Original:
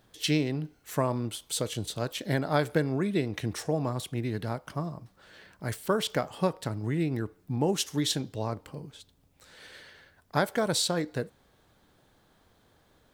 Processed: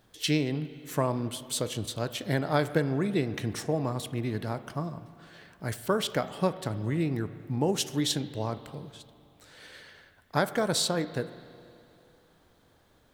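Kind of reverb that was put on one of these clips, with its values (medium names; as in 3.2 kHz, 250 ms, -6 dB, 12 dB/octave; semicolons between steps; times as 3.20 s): spring tank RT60 2.7 s, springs 37/43/47 ms, chirp 35 ms, DRR 13.5 dB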